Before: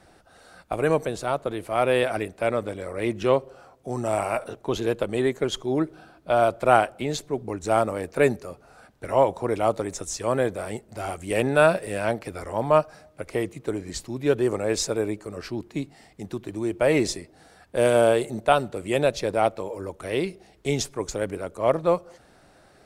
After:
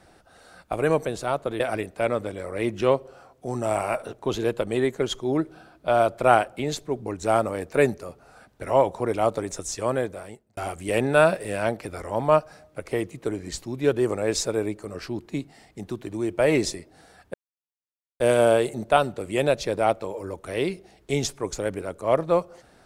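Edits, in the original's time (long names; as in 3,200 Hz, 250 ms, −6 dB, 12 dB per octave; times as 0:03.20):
0:01.60–0:02.02: remove
0:10.23–0:10.99: fade out
0:17.76: splice in silence 0.86 s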